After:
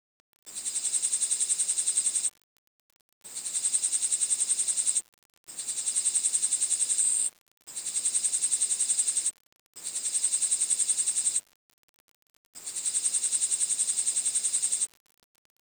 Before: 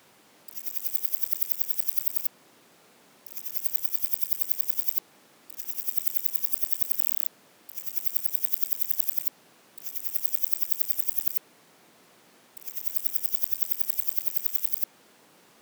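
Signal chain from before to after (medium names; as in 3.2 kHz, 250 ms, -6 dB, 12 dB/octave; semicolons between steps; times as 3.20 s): knee-point frequency compression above 1.9 kHz 1.5:1; dynamic bell 3.4 kHz, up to +6 dB, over -47 dBFS, Q 1.3; word length cut 8-bit, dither none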